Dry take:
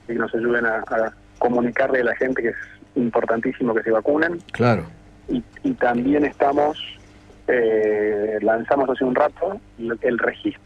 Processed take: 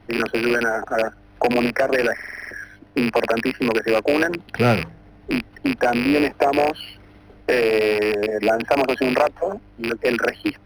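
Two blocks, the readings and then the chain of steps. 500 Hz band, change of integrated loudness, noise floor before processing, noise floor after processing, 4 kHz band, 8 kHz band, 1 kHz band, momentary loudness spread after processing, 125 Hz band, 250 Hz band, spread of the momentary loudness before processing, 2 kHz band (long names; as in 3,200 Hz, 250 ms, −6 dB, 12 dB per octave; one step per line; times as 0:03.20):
−0.5 dB, +0.5 dB, −49 dBFS, −49 dBFS, +7.0 dB, can't be measured, −0.5 dB, 10 LU, +0.5 dB, −0.5 dB, 9 LU, +1.0 dB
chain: loose part that buzzes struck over −29 dBFS, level −10 dBFS
buffer that repeats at 0:02.14, samples 2,048, times 7
linearly interpolated sample-rate reduction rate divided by 6×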